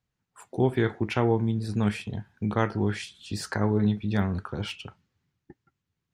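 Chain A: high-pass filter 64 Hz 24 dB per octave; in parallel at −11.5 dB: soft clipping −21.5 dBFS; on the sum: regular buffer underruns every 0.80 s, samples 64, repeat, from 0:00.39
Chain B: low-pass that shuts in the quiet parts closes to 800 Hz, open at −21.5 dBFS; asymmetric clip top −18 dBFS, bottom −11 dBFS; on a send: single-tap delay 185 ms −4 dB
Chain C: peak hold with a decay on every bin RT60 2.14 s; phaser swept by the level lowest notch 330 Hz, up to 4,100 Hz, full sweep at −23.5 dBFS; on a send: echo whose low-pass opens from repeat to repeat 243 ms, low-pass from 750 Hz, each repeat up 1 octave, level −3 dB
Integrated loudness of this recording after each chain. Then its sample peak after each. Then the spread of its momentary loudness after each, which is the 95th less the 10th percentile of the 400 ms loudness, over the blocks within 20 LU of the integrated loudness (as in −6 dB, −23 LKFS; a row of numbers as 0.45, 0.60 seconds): −26.5, −27.5, −22.0 LKFS; −7.5, −13.0, −6.0 dBFS; 11, 9, 13 LU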